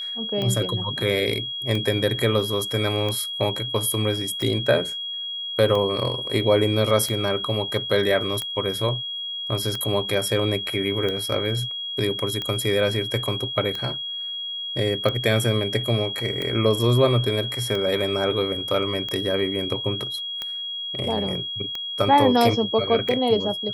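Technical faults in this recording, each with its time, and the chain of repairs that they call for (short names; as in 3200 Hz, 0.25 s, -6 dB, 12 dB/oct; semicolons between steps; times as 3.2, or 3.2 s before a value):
tick 45 rpm -15 dBFS
tone 3300 Hz -28 dBFS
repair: de-click; notch 3300 Hz, Q 30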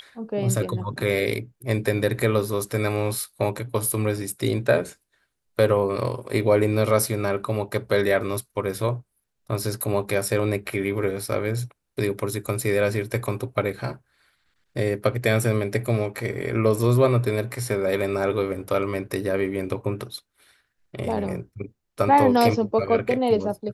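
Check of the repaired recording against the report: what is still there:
none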